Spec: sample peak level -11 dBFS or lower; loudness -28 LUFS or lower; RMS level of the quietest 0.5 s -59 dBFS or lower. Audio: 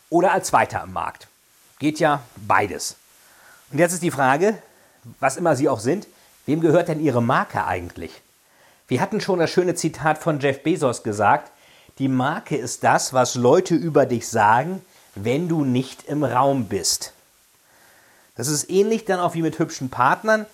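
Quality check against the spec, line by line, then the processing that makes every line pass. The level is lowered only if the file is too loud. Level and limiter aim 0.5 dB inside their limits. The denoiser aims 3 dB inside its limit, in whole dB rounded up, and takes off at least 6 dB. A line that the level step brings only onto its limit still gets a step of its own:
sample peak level -3.5 dBFS: fail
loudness -21.0 LUFS: fail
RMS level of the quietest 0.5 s -57 dBFS: fail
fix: gain -7.5 dB; limiter -11.5 dBFS

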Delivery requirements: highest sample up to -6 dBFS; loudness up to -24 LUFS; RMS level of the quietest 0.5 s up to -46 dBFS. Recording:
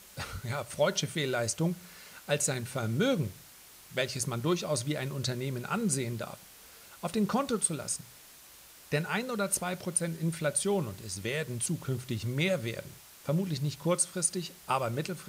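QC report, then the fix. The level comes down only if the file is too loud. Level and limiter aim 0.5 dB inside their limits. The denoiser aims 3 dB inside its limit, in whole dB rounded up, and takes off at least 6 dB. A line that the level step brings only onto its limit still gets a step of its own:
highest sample -14.0 dBFS: OK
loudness -31.5 LUFS: OK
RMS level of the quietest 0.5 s -54 dBFS: OK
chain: none

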